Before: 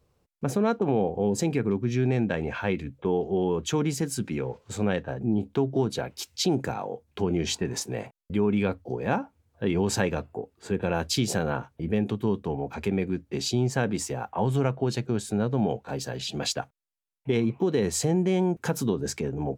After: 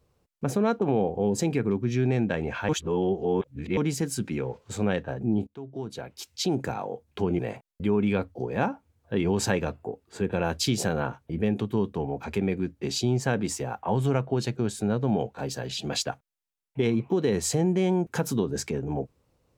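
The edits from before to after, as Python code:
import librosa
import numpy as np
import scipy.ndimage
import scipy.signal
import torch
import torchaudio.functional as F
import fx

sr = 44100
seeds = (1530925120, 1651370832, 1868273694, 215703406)

y = fx.edit(x, sr, fx.reverse_span(start_s=2.69, length_s=1.08),
    fx.fade_in_from(start_s=5.47, length_s=1.3, floor_db=-22.0),
    fx.cut(start_s=7.39, length_s=0.5), tone=tone)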